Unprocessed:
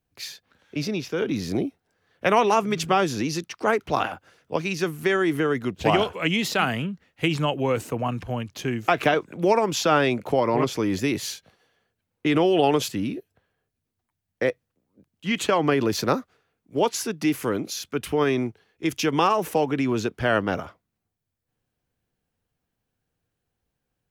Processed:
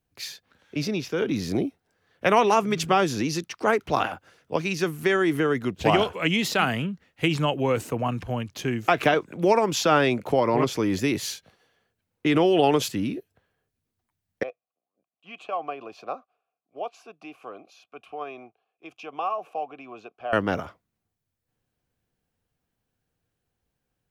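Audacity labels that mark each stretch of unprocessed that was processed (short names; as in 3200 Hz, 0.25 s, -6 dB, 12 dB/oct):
14.430000	20.330000	vowel filter a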